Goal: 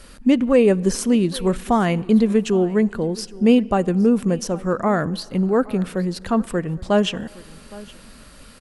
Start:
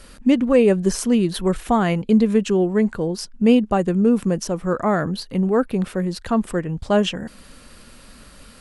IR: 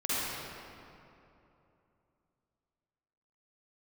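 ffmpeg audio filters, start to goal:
-filter_complex "[0:a]aecho=1:1:816:0.0891,asplit=2[a][b];[1:a]atrim=start_sample=2205[c];[b][c]afir=irnorm=-1:irlink=0,volume=-32.5dB[d];[a][d]amix=inputs=2:normalize=0"

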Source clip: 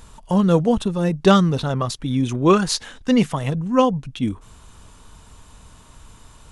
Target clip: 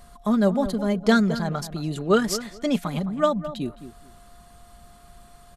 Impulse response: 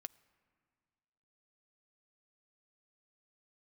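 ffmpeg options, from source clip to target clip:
-filter_complex "[0:a]asetrate=51597,aresample=44100,aecho=1:1:4.9:0.42,aeval=exprs='val(0)+0.00398*sin(2*PI*700*n/s)':c=same,asplit=2[a][b];[b]adelay=214,lowpass=f=1.6k:p=1,volume=-12dB,asplit=2[c][d];[d]adelay=214,lowpass=f=1.6k:p=1,volume=0.18[e];[c][e]amix=inputs=2:normalize=0[f];[a][f]amix=inputs=2:normalize=0,volume=-6dB"

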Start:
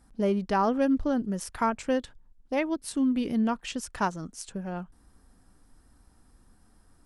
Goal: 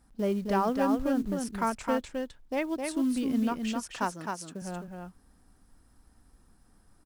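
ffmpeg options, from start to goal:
-filter_complex "[0:a]asettb=1/sr,asplit=3[a][b][c];[a]atrim=end=3.874[d];[b]atrim=start=3.87:end=4.62,asetpts=PTS-STARTPTS,afade=t=in:d=0.004:c=qsin,afade=t=out:st=0.746:d=0.004:c=qsin,highpass=180[e];[c]atrim=start=4.616[f];[d][e]acrossfade=d=0.004:c1=hsin:c2=qsin[g];[g][f]acrossfade=d=0.004:c1=qsin:c2=hsin,acrusher=bits=7:mode=log:mix=0:aa=0.000001,aecho=1:1:261:0.596,volume=-3dB"

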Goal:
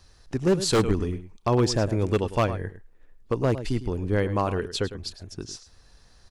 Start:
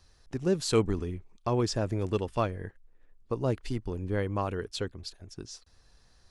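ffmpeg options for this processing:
-filter_complex "[0:a]asplit=2[a][b];[b]adelay=105,volume=-13dB,highshelf=f=4k:g=-2.36[c];[a][c]amix=inputs=2:normalize=0,aeval=exprs='0.106*(abs(mod(val(0)/0.106+3,4)-2)-1)':c=same,volume=6dB"

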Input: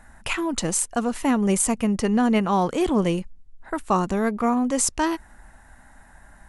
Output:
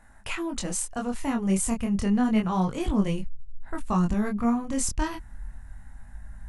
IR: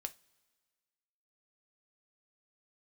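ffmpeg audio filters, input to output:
-af "flanger=delay=19.5:depth=6.8:speed=0.31,acontrast=26,asubboost=boost=7:cutoff=160,volume=-8dB"

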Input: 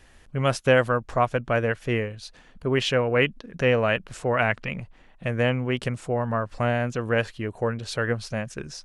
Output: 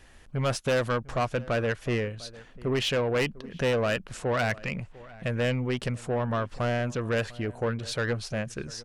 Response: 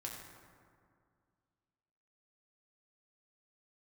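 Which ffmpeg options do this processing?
-filter_complex "[0:a]asoftclip=type=tanh:threshold=-21dB,asplit=2[a][b];[b]adelay=699.7,volume=-20dB,highshelf=f=4k:g=-15.7[c];[a][c]amix=inputs=2:normalize=0"

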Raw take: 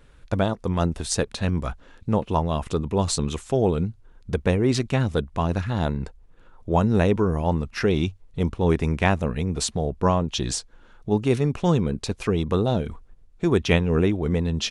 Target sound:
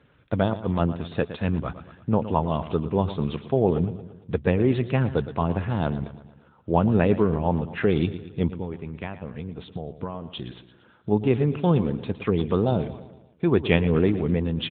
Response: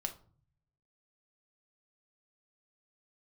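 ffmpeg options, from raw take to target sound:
-filter_complex "[0:a]asplit=3[a][b][c];[a]afade=t=out:st=8.52:d=0.02[d];[b]acompressor=threshold=-29dB:ratio=10,afade=t=in:st=8.52:d=0.02,afade=t=out:st=10.55:d=0.02[e];[c]afade=t=in:st=10.55:d=0.02[f];[d][e][f]amix=inputs=3:normalize=0,aecho=1:1:114|228|342|456|570:0.224|0.114|0.0582|0.0297|0.0151" -ar 8000 -c:a libopencore_amrnb -b:a 12200

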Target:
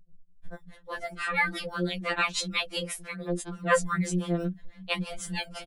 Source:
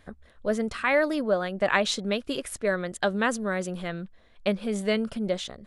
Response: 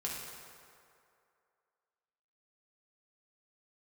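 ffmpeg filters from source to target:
-filter_complex "[0:a]asettb=1/sr,asplit=3[a][b][c];[a]atrim=end=2.564[d];[b]atrim=start=2.56:end=3.21,asetpts=PTS-STARTPTS,afade=t=in:d=0.004:c=qsin,afade=t=out:st=0.646:d=0.004:c=qsin,acrossover=split=350|1400[e][f][g];[e]acompressor=threshold=-39dB:ratio=4[h];[f]acompressor=threshold=-27dB:ratio=4[i];[g]acompressor=threshold=-39dB:ratio=4[j];[h][i][j]amix=inputs=3:normalize=0[k];[c]atrim=start=3.206[l];[d][k]acrossfade=d=0.004:c1=hsin:c2=qsin[m];[m][l]acrossfade=d=0.004:c1=qsin:c2=hsin,acrossover=split=120|1100|1900[n][o][p][q];[n]acrusher=samples=20:mix=1:aa=0.000001:lfo=1:lforange=12:lforate=0.91[r];[r][o][p][q]amix=inputs=4:normalize=0,acrossover=split=150[s][t];[t]adelay=450[u];[s][u]amix=inputs=2:normalize=0,acrossover=split=430[v][w];[v]aeval=exprs='val(0)*(1-1/2+1/2*cos(2*PI*6*n/s))':c=same[x];[w]aeval=exprs='val(0)*(1-1/2-1/2*cos(2*PI*6*n/s))':c=same[y];[x][y]amix=inputs=2:normalize=0,afftfilt=real='re*2.83*eq(mod(b,8),0)':imag='im*2.83*eq(mod(b,8),0)':win_size=2048:overlap=0.75,volume=8.5dB"

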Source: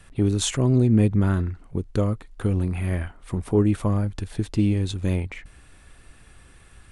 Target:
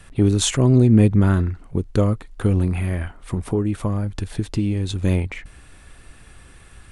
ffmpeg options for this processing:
-filter_complex "[0:a]asettb=1/sr,asplit=3[a][b][c];[a]atrim=end=2.784[d];[b]atrim=start=2.78:end=4.94,asetpts=PTS-STARTPTS,afade=t=in:d=0.004:c=qsin,afade=t=out:st=2.156:d=0.004:c=qsin,acompressor=threshold=-24dB:ratio=3[e];[c]atrim=start=4.936[f];[d][e]acrossfade=d=0.004:c1=hsin:c2=qsin[g];[g][f]acrossfade=d=0.004:c1=qsin:c2=hsin,volume=4.5dB"

